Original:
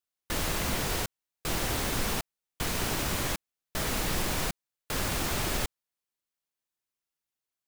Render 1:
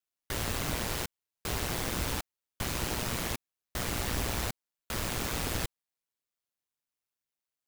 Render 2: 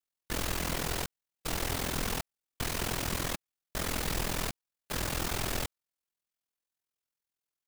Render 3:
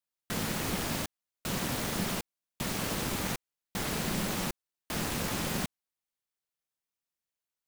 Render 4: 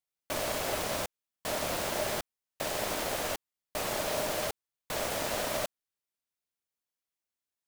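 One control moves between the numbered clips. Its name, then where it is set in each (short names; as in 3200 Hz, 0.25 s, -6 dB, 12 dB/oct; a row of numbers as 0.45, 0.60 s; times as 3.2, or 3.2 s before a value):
ring modulator, frequency: 60, 21, 190, 610 Hz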